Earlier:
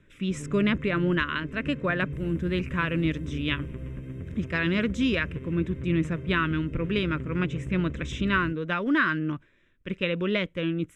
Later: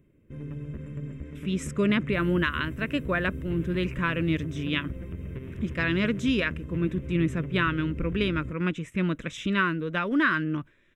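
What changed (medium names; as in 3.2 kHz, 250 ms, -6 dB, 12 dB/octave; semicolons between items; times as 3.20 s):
speech: entry +1.25 s; master: remove low-pass 8.7 kHz 12 dB/octave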